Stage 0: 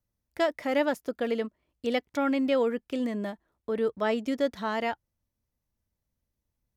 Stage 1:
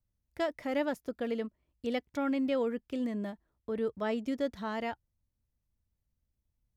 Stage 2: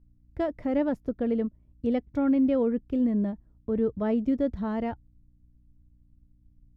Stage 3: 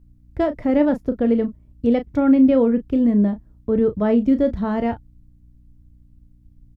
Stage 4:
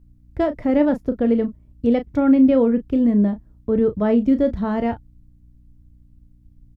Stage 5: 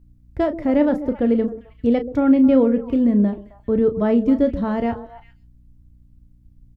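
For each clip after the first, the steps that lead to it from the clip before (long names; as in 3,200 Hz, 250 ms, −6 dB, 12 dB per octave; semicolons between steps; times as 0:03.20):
low-shelf EQ 170 Hz +11 dB; level −7 dB
spectral tilt −4.5 dB per octave; mains hum 60 Hz, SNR 34 dB
double-tracking delay 34 ms −10.5 dB; level +8 dB
no processing that can be heard
echo through a band-pass that steps 132 ms, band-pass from 370 Hz, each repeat 1.4 octaves, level −9 dB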